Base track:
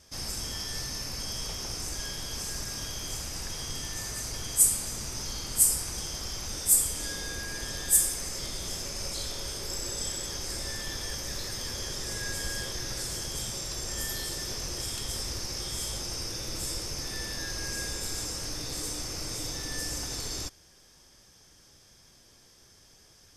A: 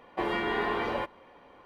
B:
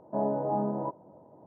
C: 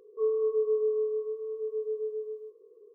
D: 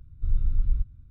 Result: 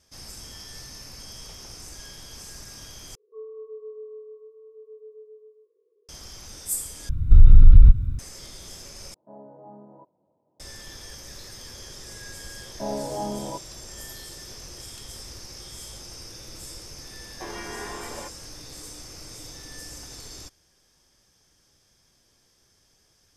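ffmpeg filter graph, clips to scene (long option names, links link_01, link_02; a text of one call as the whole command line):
ffmpeg -i bed.wav -i cue0.wav -i cue1.wav -i cue2.wav -i cue3.wav -filter_complex "[2:a]asplit=2[link_01][link_02];[0:a]volume=-6.5dB[link_03];[4:a]alimiter=level_in=23.5dB:limit=-1dB:release=50:level=0:latency=1[link_04];[link_03]asplit=4[link_05][link_06][link_07][link_08];[link_05]atrim=end=3.154[link_09];[3:a]atrim=end=2.94,asetpts=PTS-STARTPTS,volume=-12.5dB[link_10];[link_06]atrim=start=6.086:end=7.094[link_11];[link_04]atrim=end=1.1,asetpts=PTS-STARTPTS,volume=-1.5dB[link_12];[link_07]atrim=start=8.186:end=9.144[link_13];[link_01]atrim=end=1.46,asetpts=PTS-STARTPTS,volume=-17dB[link_14];[link_08]atrim=start=10.596[link_15];[link_02]atrim=end=1.46,asetpts=PTS-STARTPTS,volume=-1.5dB,afade=type=in:duration=0.004:curve=hsin,afade=type=out:start_time=1.456:duration=0.004:curve=hsin,adelay=12670[link_16];[1:a]atrim=end=1.65,asetpts=PTS-STARTPTS,volume=-7.5dB,afade=type=in:duration=0.004:curve=hsin,afade=type=out:start_time=1.646:duration=0.004:curve=hsin,adelay=17230[link_17];[link_09][link_10]acrossfade=duration=0.004:curve1=hsin:curve2=hsin[link_18];[link_18][link_11]acrossfade=duration=0.004:curve1=hsin:curve2=hsin[link_19];[link_19][link_12]acrossfade=duration=0.004:curve1=hsin:curve2=hsin[link_20];[link_20][link_13]acrossfade=duration=0.004:curve1=hsin:curve2=hsin[link_21];[link_21][link_14]acrossfade=duration=0.004:curve1=hsin:curve2=hsin[link_22];[link_22][link_15]acrossfade=duration=0.004:curve1=hsin:curve2=hsin[link_23];[link_23][link_16][link_17]amix=inputs=3:normalize=0" out.wav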